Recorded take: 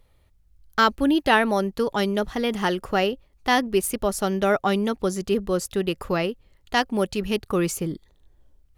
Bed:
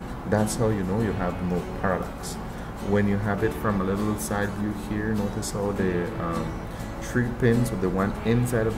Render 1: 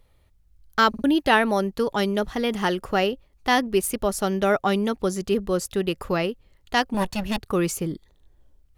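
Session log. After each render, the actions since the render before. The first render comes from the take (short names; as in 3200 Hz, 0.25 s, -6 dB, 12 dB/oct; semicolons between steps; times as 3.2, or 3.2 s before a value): 0.89 stutter in place 0.05 s, 3 plays; 6.94–7.38 minimum comb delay 1.1 ms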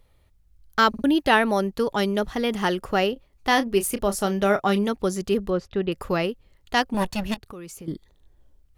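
3.13–4.89 doubler 30 ms -12 dB; 5.5–5.92 air absorption 270 m; 7.34–7.88 compressor 4:1, threshold -39 dBFS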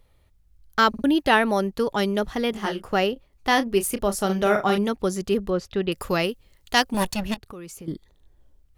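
2.51–2.93 detuned doubles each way 56 cents; 4.25–4.78 doubler 43 ms -6 dB; 5.58–7.14 high shelf 3200 Hz +9.5 dB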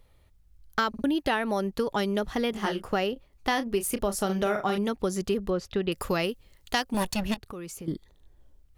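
compressor 6:1, threshold -23 dBFS, peak gain reduction 10 dB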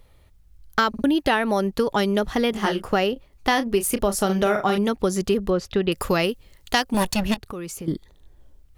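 gain +6 dB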